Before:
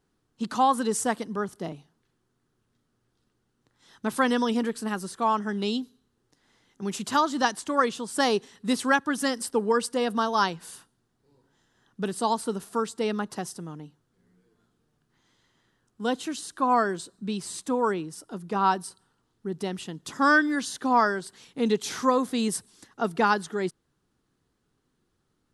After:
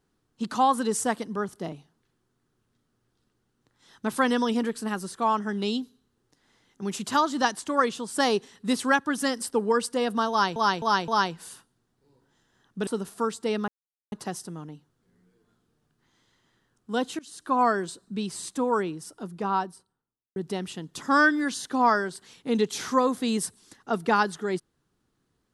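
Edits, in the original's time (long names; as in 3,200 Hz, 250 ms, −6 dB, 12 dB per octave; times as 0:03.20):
0:10.30–0:10.56: repeat, 4 plays
0:12.09–0:12.42: remove
0:13.23: splice in silence 0.44 s
0:16.30–0:16.61: fade in, from −22.5 dB
0:18.25–0:19.47: fade out and dull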